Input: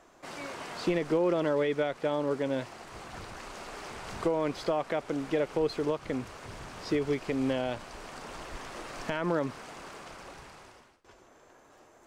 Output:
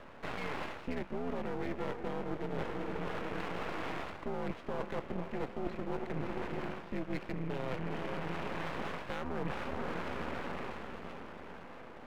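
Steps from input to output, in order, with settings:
feedback delay with all-pass diffusion 459 ms, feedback 53%, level −9.5 dB
single-sideband voice off tune −100 Hz 170–2,900 Hz
half-wave rectification
reversed playback
downward compressor 12 to 1, threshold −43 dBFS, peak gain reduction 19.5 dB
reversed playback
level +11 dB

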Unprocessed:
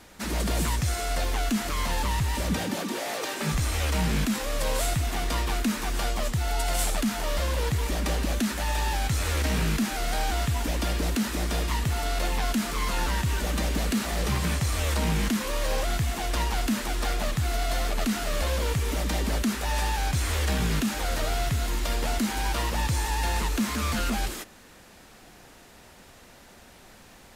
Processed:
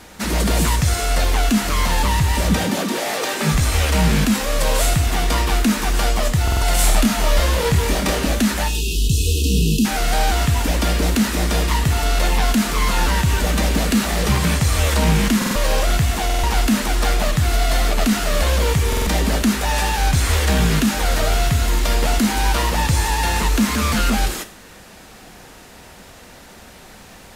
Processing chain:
0:06.81–0:08.29: double-tracking delay 26 ms −4.5 dB
0:08.68–0:09.85: time-frequency box erased 490–2,500 Hz
reverb whose tail is shaped and stops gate 160 ms falling, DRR 9.5 dB
buffer that repeats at 0:06.43/0:15.37/0:16.25/0:18.88, samples 2,048, times 3
level +8.5 dB

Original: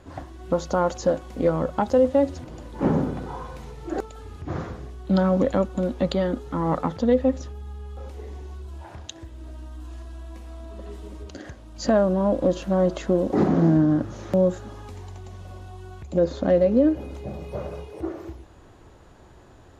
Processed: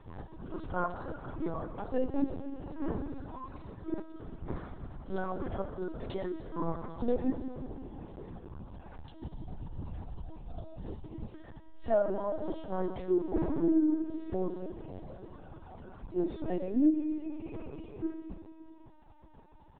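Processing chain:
reverb reduction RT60 1.7 s
low-shelf EQ 140 Hz +6 dB
comb filter 2.8 ms, depth 77%
harmonic and percussive parts rebalanced percussive −11 dB
steady tone 890 Hz −54 dBFS
on a send at −6.5 dB: convolution reverb RT60 3.1 s, pre-delay 10 ms
on the sum: linear-prediction vocoder at 8 kHz pitch kept
level −8.5 dB

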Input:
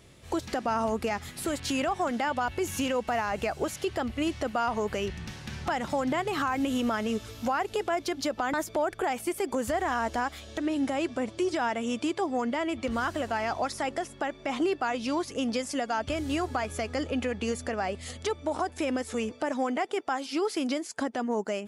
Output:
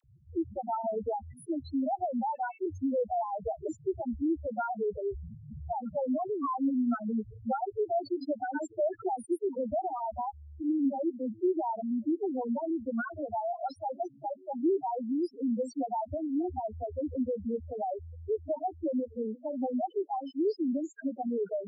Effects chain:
0:02.18–0:02.63: elliptic band-pass filter 390–2,700 Hz, stop band 50 dB
spectral peaks only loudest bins 2
all-pass dispersion lows, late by 42 ms, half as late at 800 Hz
level +1.5 dB

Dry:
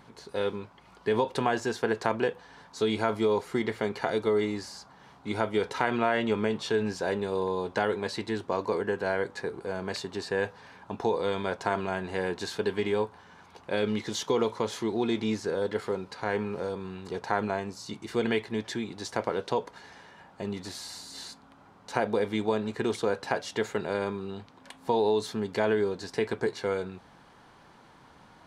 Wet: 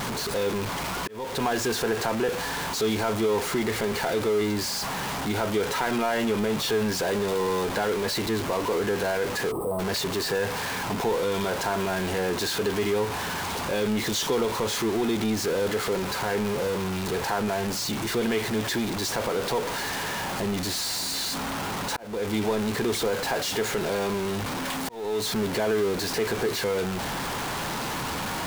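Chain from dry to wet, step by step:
converter with a step at zero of −24.5 dBFS
in parallel at −2 dB: brickwall limiter −19 dBFS, peak gain reduction 10.5 dB
on the sum: volume swells 369 ms
gain on a spectral selection 0:09.52–0:09.79, 1,300–7,900 Hz −27 dB
level −5.5 dB

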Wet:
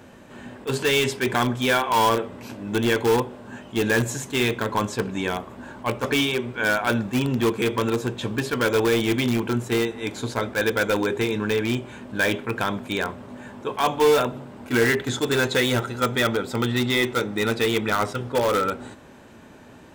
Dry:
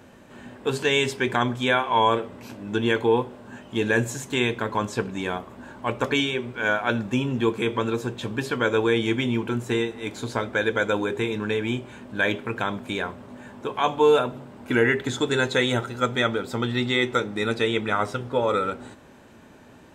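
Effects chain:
in parallel at −8.5 dB: wrap-around overflow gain 17 dB
on the sum: level that may rise only so fast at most 370 dB per second

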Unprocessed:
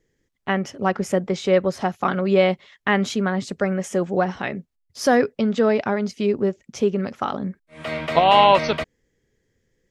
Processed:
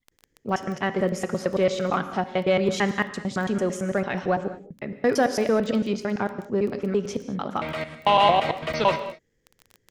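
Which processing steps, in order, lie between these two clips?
slices reordered back to front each 112 ms, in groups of 4
in parallel at −7.5 dB: soft clipping −15.5 dBFS, distortion −10 dB
on the sum: reverb whose tail is shaped and stops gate 240 ms flat, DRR 10 dB
surface crackle 10 per second −26 dBFS
level −5.5 dB

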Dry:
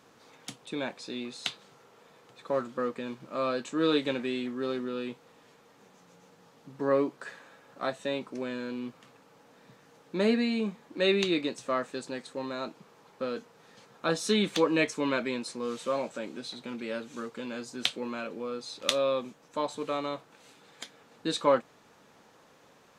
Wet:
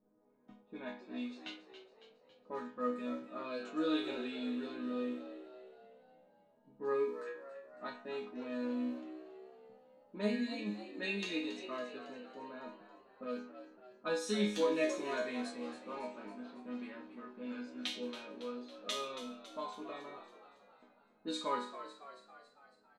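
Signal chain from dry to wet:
resonators tuned to a chord G#3 minor, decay 0.46 s
low-pass that shuts in the quiet parts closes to 440 Hz, open at −45.5 dBFS
echo with shifted repeats 277 ms, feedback 54%, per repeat +67 Hz, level −12 dB
level +10 dB

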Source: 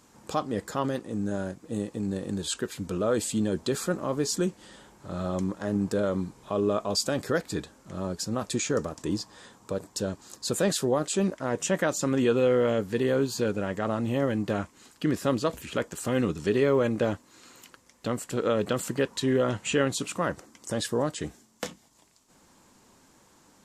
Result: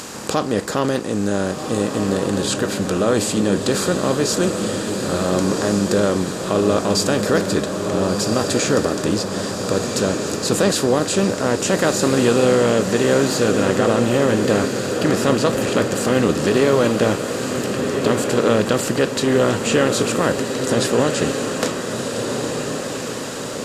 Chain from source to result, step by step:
compressor on every frequency bin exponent 0.6
feedback delay with all-pass diffusion 1,440 ms, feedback 52%, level −5 dB
one half of a high-frequency compander encoder only
level +4.5 dB

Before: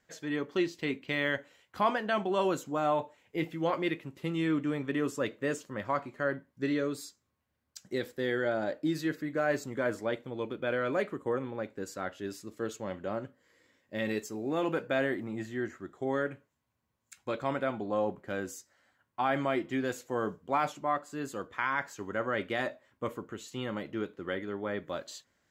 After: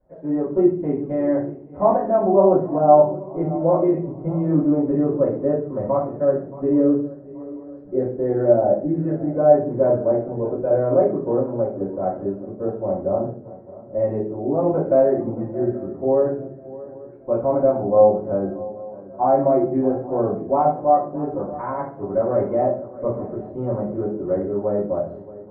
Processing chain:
Chebyshev low-pass filter 770 Hz, order 3
feedback echo with a long and a short gap by turns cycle 831 ms, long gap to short 3 to 1, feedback 38%, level −18 dB
rectangular room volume 41 cubic metres, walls mixed, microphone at 2.6 metres

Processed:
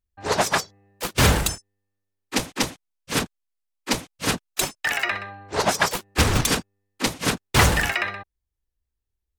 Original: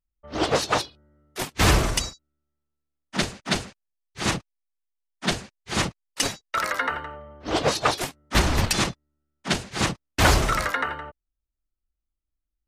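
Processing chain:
wrong playback speed 33 rpm record played at 45 rpm
level +1.5 dB

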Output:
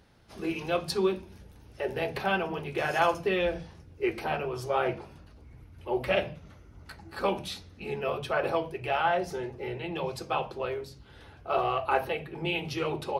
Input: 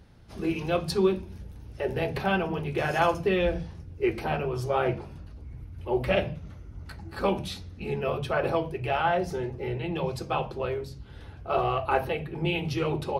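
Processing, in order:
low-shelf EQ 240 Hz −10.5 dB

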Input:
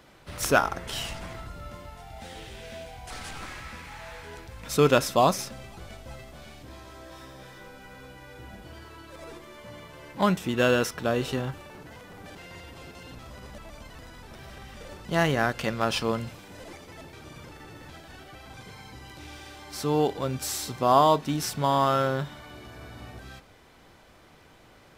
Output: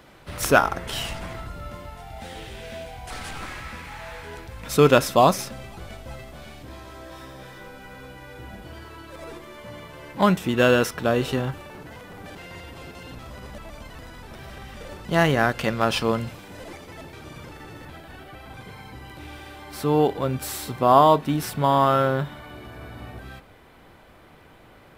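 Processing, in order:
parametric band 6,000 Hz −3.5 dB 1.2 octaves, from 0:17.85 −10 dB
level +4.5 dB

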